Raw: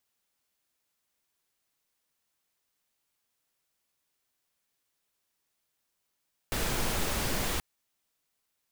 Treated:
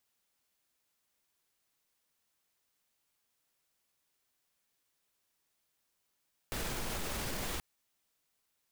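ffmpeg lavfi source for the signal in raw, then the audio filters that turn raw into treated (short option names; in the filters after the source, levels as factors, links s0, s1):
-f lavfi -i "anoisesrc=c=pink:a=0.162:d=1.08:r=44100:seed=1"
-af "alimiter=level_in=1.78:limit=0.0631:level=0:latency=1:release=46,volume=0.562"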